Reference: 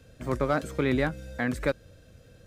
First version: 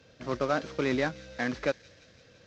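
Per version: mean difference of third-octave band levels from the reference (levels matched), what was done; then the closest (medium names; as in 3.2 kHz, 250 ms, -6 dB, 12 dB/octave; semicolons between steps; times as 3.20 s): 4.5 dB: CVSD coder 32 kbps; high-pass 250 Hz 6 dB/octave; feedback echo behind a high-pass 170 ms, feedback 73%, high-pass 3.9 kHz, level -13.5 dB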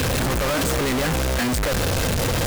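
18.0 dB: one-bit comparator; trim +8.5 dB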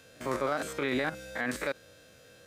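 7.0 dB: spectrogram pixelated in time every 50 ms; high-pass 760 Hz 6 dB/octave; peak limiter -28 dBFS, peak gain reduction 9.5 dB; trim +7.5 dB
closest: first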